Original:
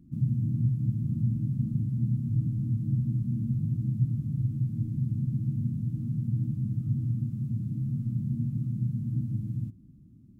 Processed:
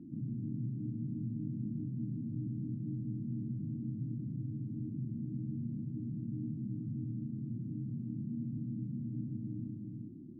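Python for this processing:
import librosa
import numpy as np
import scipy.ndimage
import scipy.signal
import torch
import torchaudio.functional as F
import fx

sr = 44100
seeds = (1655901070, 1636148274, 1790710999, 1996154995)

y = fx.bandpass_q(x, sr, hz=350.0, q=2.6)
y = y + 10.0 ** (-6.0 / 20.0) * np.pad(y, (int(376 * sr / 1000.0), 0))[:len(y)]
y = fx.env_flatten(y, sr, amount_pct=50)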